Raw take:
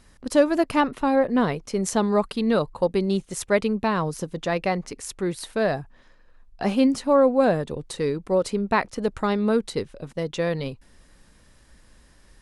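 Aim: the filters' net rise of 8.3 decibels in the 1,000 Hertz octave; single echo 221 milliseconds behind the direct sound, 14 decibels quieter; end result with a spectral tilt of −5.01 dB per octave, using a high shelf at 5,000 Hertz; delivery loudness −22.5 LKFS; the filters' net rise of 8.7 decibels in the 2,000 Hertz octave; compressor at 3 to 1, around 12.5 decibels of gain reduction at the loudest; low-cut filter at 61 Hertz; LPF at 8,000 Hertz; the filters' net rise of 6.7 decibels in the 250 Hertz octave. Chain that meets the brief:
high-pass filter 61 Hz
low-pass filter 8,000 Hz
parametric band 250 Hz +7.5 dB
parametric band 1,000 Hz +8 dB
parametric band 2,000 Hz +7 dB
high-shelf EQ 5,000 Hz +7 dB
downward compressor 3 to 1, threshold −25 dBFS
single-tap delay 221 ms −14 dB
level +4.5 dB

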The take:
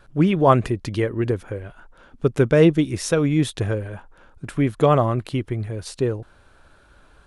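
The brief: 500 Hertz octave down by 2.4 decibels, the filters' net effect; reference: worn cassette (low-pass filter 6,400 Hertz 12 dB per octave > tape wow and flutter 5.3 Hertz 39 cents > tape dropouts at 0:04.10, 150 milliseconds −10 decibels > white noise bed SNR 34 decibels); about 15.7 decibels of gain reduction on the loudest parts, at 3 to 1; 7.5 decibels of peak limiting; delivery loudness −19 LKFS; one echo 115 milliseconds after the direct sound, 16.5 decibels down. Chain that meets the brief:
parametric band 500 Hz −3 dB
downward compressor 3 to 1, threshold −33 dBFS
brickwall limiter −26.5 dBFS
low-pass filter 6,400 Hz 12 dB per octave
single-tap delay 115 ms −16.5 dB
tape wow and flutter 5.3 Hz 39 cents
tape dropouts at 0:04.10, 150 ms −10 dB
white noise bed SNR 34 dB
level +18.5 dB

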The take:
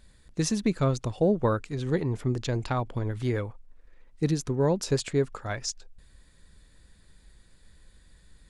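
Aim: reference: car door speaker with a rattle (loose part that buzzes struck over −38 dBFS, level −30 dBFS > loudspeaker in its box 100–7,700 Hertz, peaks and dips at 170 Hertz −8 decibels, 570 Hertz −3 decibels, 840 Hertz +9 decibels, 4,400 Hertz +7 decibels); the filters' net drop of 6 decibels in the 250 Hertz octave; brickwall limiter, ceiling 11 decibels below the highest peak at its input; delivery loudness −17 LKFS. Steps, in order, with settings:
parametric band 250 Hz −6 dB
brickwall limiter −25.5 dBFS
loose part that buzzes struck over −38 dBFS, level −30 dBFS
loudspeaker in its box 100–7,700 Hz, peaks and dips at 170 Hz −8 dB, 570 Hz −3 dB, 840 Hz +9 dB, 4,400 Hz +7 dB
level +18.5 dB

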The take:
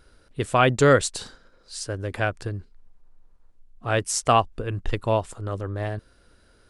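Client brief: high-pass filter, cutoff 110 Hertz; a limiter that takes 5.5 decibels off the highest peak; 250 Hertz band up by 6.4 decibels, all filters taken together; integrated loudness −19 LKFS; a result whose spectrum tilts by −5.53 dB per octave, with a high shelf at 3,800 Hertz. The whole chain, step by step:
high-pass filter 110 Hz
parametric band 250 Hz +8 dB
high-shelf EQ 3,800 Hz −6 dB
level +6.5 dB
brickwall limiter −1.5 dBFS

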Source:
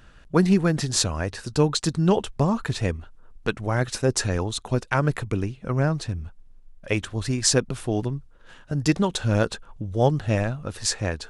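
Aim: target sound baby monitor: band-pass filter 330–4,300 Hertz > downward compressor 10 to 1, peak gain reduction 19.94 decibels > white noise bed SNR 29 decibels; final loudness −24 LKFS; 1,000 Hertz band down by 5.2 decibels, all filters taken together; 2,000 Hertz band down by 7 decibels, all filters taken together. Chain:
band-pass filter 330–4,300 Hz
parametric band 1,000 Hz −5 dB
parametric band 2,000 Hz −7.5 dB
downward compressor 10 to 1, threshold −37 dBFS
white noise bed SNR 29 dB
level +19 dB

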